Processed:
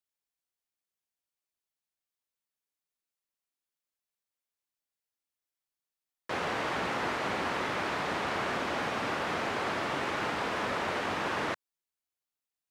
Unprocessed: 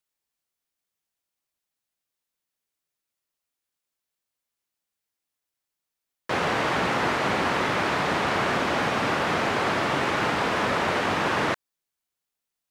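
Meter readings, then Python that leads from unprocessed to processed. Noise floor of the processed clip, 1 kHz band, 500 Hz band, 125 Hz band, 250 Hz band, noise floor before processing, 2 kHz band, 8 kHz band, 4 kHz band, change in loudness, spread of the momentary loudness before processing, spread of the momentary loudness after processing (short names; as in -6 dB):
under -85 dBFS, -7.5 dB, -7.5 dB, -10.0 dB, -8.5 dB, under -85 dBFS, -7.5 dB, -7.5 dB, -7.5 dB, -7.5 dB, 2 LU, 2 LU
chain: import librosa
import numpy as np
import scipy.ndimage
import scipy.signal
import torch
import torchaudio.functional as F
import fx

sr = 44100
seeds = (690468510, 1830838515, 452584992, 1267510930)

y = fx.peak_eq(x, sr, hz=140.0, db=-3.5, octaves=1.1)
y = y * 10.0 ** (-7.5 / 20.0)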